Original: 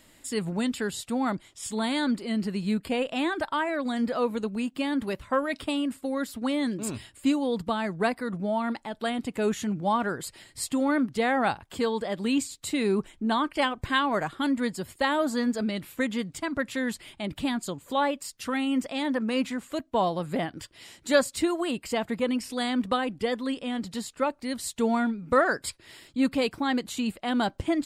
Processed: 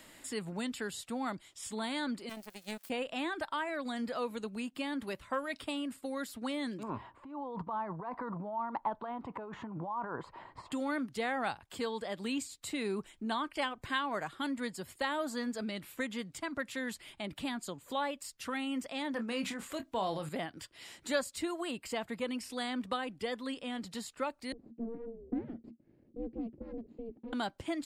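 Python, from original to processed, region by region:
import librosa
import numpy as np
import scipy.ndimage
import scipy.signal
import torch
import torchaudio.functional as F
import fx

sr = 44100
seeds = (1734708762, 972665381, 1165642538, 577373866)

y = fx.chain(x, sr, fx.crossing_spikes(level_db=-31.0),
    fx.high_shelf(hz=7900.0, db=8.0),
    fx.power_curve(exponent=3.0), at=(2.29, 2.9))
y = fx.chain(y, sr, fx.over_compress(threshold_db=-34.0, ratio=-1.0),
    fx.lowpass_res(hz=1000.0, q=6.5), at=(6.83, 10.72))
y = fx.chain(y, sr, fx.transient(attack_db=-1, sustain_db=8),
    fx.doubler(ms=26.0, db=-9.5), at=(19.11, 20.29))
y = fx.chain(y, sr, fx.lower_of_two(delay_ms=0.42),
    fx.ring_mod(carrier_hz=230.0),
    fx.lowpass_res(hz=290.0, q=2.3), at=(24.52, 27.33))
y = fx.low_shelf(y, sr, hz=490.0, db=-5.5)
y = fx.band_squash(y, sr, depth_pct=40)
y = F.gain(torch.from_numpy(y), -6.5).numpy()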